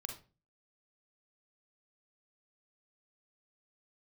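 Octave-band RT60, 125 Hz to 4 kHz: 0.55 s, 0.45 s, 0.40 s, 0.30 s, 0.30 s, 0.25 s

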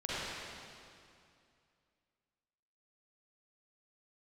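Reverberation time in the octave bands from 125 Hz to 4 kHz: 2.7 s, 2.6 s, 2.4 s, 2.4 s, 2.2 s, 2.2 s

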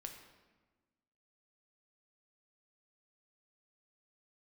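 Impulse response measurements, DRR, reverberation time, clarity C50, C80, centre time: 3.5 dB, 1.3 s, 6.5 dB, 8.0 dB, 29 ms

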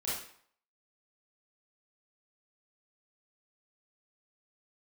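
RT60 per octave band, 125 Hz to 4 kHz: 0.50 s, 0.55 s, 0.55 s, 0.60 s, 0.55 s, 0.50 s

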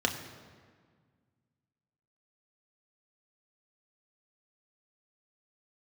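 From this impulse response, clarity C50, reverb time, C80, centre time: 9.0 dB, 1.7 s, 10.0 dB, 27 ms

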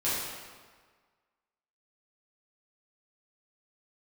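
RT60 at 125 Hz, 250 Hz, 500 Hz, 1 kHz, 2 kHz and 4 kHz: 1.4 s, 1.5 s, 1.5 s, 1.6 s, 1.4 s, 1.2 s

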